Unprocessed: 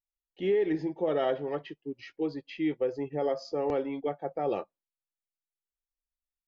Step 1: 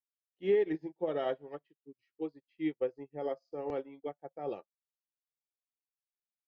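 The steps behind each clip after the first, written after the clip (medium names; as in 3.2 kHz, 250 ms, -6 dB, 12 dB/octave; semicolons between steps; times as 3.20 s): upward expansion 2.5:1, over -45 dBFS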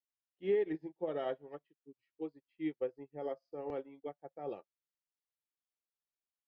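distance through air 88 m; trim -3.5 dB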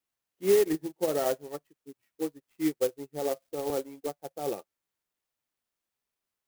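sampling jitter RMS 0.064 ms; trim +9 dB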